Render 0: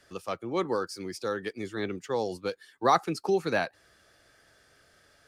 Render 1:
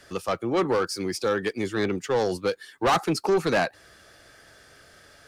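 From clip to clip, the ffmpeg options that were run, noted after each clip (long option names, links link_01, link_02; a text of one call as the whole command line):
ffmpeg -i in.wav -af "asoftclip=type=tanh:threshold=-26dB,volume=9dB" out.wav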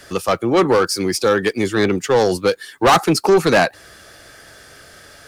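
ffmpeg -i in.wav -af "highshelf=frequency=9300:gain=6,volume=9dB" out.wav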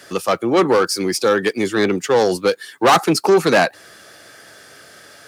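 ffmpeg -i in.wav -af "highpass=150" out.wav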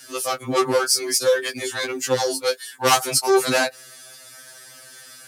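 ffmpeg -i in.wav -af "equalizer=frequency=12000:width_type=o:width=2.2:gain=13.5,bandreject=frequency=400:width=12,afftfilt=real='re*2.45*eq(mod(b,6),0)':imag='im*2.45*eq(mod(b,6),0)':win_size=2048:overlap=0.75,volume=-4dB" out.wav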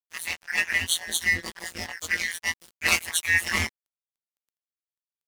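ffmpeg -i in.wav -af "afftfilt=real='real(if(lt(b,272),68*(eq(floor(b/68),0)*1+eq(floor(b/68),1)*0+eq(floor(b/68),2)*3+eq(floor(b/68),3)*2)+mod(b,68),b),0)':imag='imag(if(lt(b,272),68*(eq(floor(b/68),0)*1+eq(floor(b/68),1)*0+eq(floor(b/68),2)*3+eq(floor(b/68),3)*2)+mod(b,68),b),0)':win_size=2048:overlap=0.75,tremolo=f=170:d=0.788,aeval=exprs='sgn(val(0))*max(abs(val(0))-0.0211,0)':channel_layout=same,volume=-1dB" out.wav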